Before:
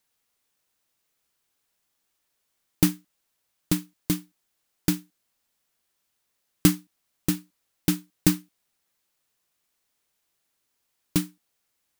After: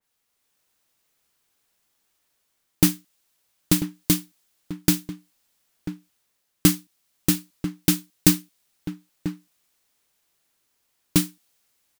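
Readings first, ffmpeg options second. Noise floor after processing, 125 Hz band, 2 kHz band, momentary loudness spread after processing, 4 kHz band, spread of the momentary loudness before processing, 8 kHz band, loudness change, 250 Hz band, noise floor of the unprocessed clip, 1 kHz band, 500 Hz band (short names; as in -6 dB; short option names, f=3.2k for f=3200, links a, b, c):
-74 dBFS, +3.0 dB, +4.0 dB, 18 LU, +6.0 dB, 10 LU, +6.5 dB, +3.5 dB, +3.0 dB, -77 dBFS, +3.0 dB, +3.0 dB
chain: -filter_complex "[0:a]asplit=2[a][b];[b]adelay=991.3,volume=-12dB,highshelf=f=4k:g=-22.3[c];[a][c]amix=inputs=2:normalize=0,dynaudnorm=f=120:g=7:m=4.5dB,adynamicequalizer=threshold=0.00631:dfrequency=2400:dqfactor=0.7:tfrequency=2400:tqfactor=0.7:attack=5:release=100:ratio=0.375:range=3:mode=boostabove:tftype=highshelf"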